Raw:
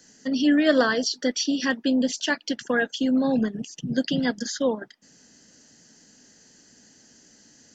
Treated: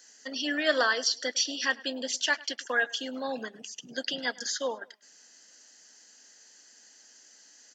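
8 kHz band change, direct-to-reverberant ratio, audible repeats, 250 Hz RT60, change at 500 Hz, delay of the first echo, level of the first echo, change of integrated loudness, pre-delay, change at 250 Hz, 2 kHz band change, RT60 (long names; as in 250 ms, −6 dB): can't be measured, no reverb audible, 2, no reverb audible, −7.0 dB, 103 ms, −22.0 dB, −5.5 dB, no reverb audible, −16.5 dB, −0.5 dB, no reverb audible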